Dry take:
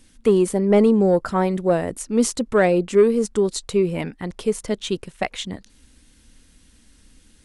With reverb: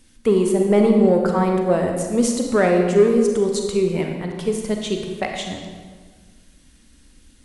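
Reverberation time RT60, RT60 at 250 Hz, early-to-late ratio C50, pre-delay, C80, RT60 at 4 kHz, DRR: 1.6 s, 1.9 s, 3.5 dB, 33 ms, 5.0 dB, 1.1 s, 2.5 dB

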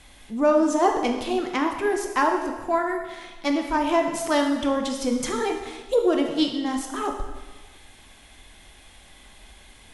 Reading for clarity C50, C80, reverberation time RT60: 5.5 dB, 7.5 dB, 1.3 s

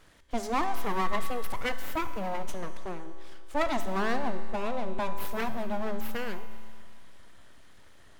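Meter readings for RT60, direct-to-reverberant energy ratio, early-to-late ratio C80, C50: 2.1 s, 9.0 dB, 11.0 dB, 10.5 dB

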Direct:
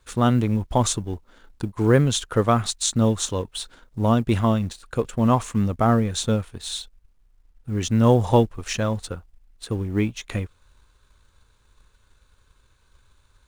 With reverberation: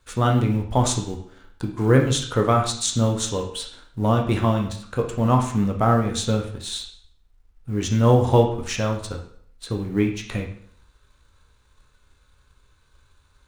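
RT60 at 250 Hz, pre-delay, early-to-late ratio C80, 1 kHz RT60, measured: 0.60 s, 7 ms, 11.5 dB, 0.60 s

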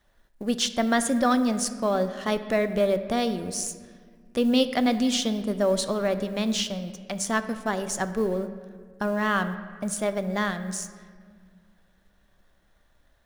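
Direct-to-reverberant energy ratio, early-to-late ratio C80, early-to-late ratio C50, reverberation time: 10.0 dB, 12.5 dB, 12.0 dB, 1.9 s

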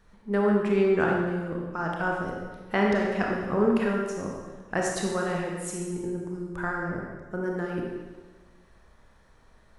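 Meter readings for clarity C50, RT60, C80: 0.5 dB, 1.4 s, 3.0 dB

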